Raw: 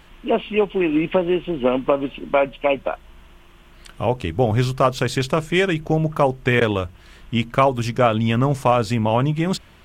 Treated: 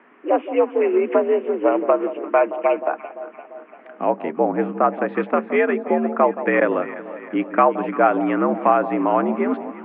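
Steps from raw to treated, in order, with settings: 4.37–5.08 s: distance through air 360 m; mistuned SSB +69 Hz 160–2100 Hz; echo whose repeats swap between lows and highs 172 ms, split 1 kHz, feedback 74%, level -12 dB; trim +1 dB

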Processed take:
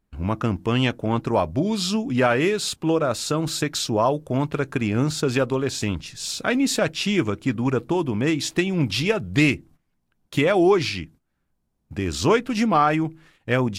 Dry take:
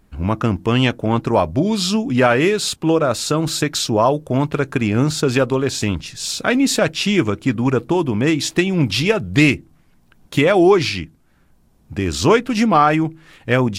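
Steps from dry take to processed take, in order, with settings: gate -42 dBFS, range -13 dB; trim -5 dB

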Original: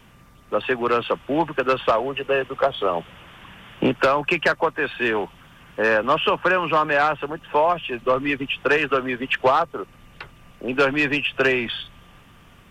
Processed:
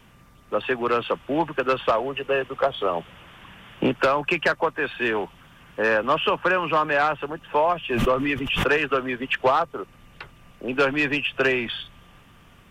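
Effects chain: 7.90–8.71 s: swell ahead of each attack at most 30 dB/s; trim -2 dB

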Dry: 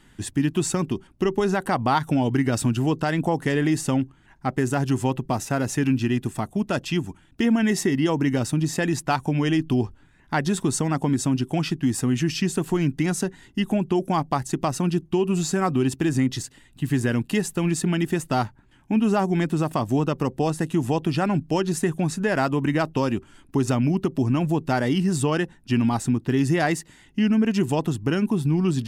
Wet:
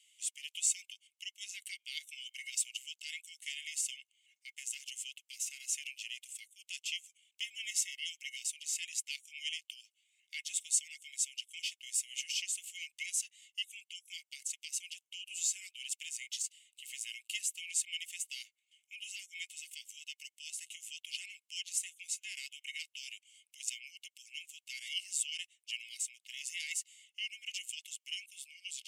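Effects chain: rippled Chebyshev high-pass 2.1 kHz, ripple 9 dB

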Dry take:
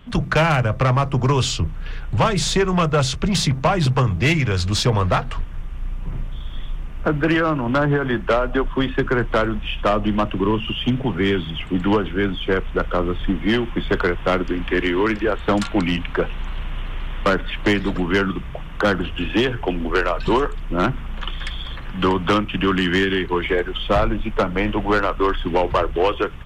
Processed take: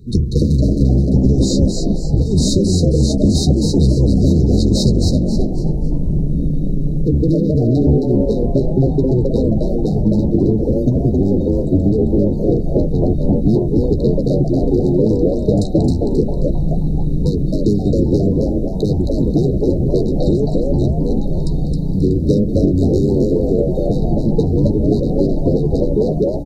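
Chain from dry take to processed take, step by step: octave divider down 1 oct, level +1 dB; bass shelf 490 Hz +4 dB; compression, threshold -15 dBFS, peak gain reduction 8.5 dB; brick-wall FIR band-stop 500–3700 Hz; doubling 14 ms -11.5 dB; on a send: frequency-shifting echo 267 ms, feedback 33%, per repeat +130 Hz, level -4 dB; on the sum: trim +4 dB

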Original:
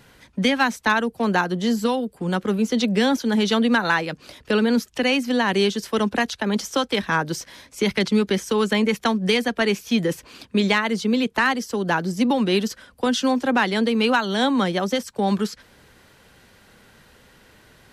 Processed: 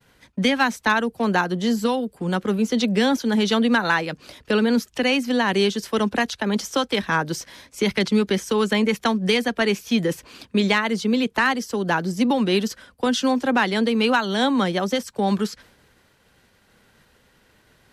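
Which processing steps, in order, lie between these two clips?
expander -46 dBFS

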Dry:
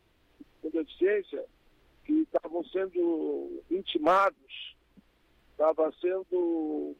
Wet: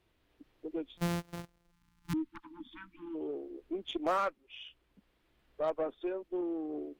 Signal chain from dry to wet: 0.97–2.14 s: sorted samples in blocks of 256 samples; Chebyshev shaper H 4 -25 dB, 5 -27 dB, 8 -45 dB, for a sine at -15 dBFS; 1.71–3.15 s: spectral selection erased 330–850 Hz; trim -8 dB

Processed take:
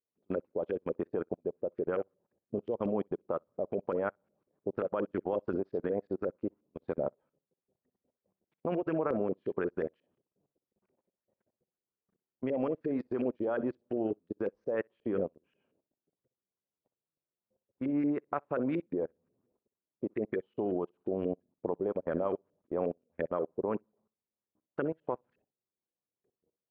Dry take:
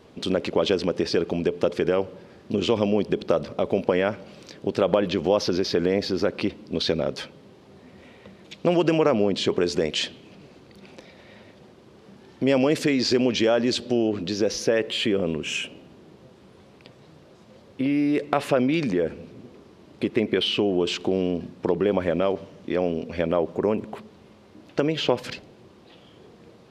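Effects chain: LFO low-pass saw up 5.6 Hz 420–1800 Hz; level held to a coarse grid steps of 23 dB; on a send: flutter echo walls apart 10.7 m, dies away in 0.24 s; on the sum: upward expansion 2.5:1, over -39 dBFS; trim -5.5 dB

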